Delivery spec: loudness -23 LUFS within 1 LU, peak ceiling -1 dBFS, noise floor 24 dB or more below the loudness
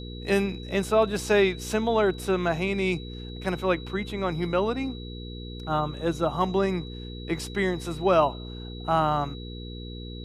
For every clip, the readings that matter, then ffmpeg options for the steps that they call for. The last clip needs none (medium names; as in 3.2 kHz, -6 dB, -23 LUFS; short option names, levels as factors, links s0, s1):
hum 60 Hz; highest harmonic 480 Hz; hum level -36 dBFS; steady tone 3.9 kHz; tone level -44 dBFS; loudness -26.5 LUFS; peak level -9.0 dBFS; loudness target -23.0 LUFS
-> -af "bandreject=f=60:t=h:w=4,bandreject=f=120:t=h:w=4,bandreject=f=180:t=h:w=4,bandreject=f=240:t=h:w=4,bandreject=f=300:t=h:w=4,bandreject=f=360:t=h:w=4,bandreject=f=420:t=h:w=4,bandreject=f=480:t=h:w=4"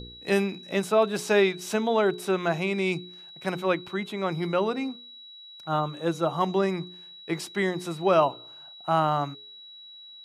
hum not found; steady tone 3.9 kHz; tone level -44 dBFS
-> -af "bandreject=f=3900:w=30"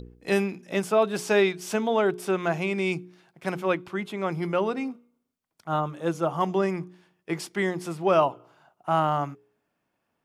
steady tone not found; loudness -26.5 LUFS; peak level -9.5 dBFS; loudness target -23.0 LUFS
-> -af "volume=1.5"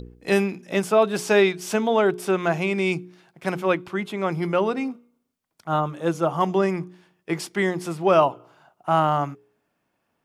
loudness -23.0 LUFS; peak level -6.0 dBFS; noise floor -75 dBFS